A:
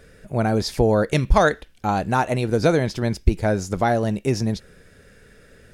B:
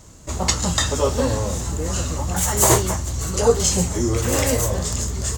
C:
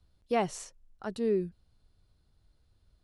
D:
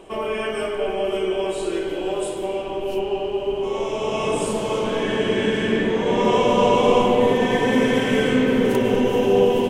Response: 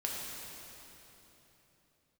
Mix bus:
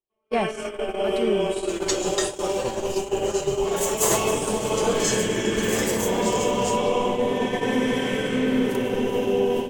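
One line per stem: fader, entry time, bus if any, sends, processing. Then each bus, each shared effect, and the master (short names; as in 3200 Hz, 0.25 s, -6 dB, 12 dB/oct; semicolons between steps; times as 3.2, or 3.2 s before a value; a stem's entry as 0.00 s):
-12.5 dB, 2.30 s, no send, hard clip -19.5 dBFS, distortion -6 dB
-10.0 dB, 1.40 s, send -12 dB, low shelf 300 Hz -10.5 dB; comb 5.9 ms, depth 86%
+3.0 dB, 0.00 s, send -18 dB, dry
-10.0 dB, 0.00 s, send -6 dB, AGC gain up to 7.5 dB; high shelf 4100 Hz +4.5 dB; compressor 2:1, threshold -16 dBFS, peak gain reduction 4.5 dB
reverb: on, RT60 3.6 s, pre-delay 3 ms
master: gate -24 dBFS, range -47 dB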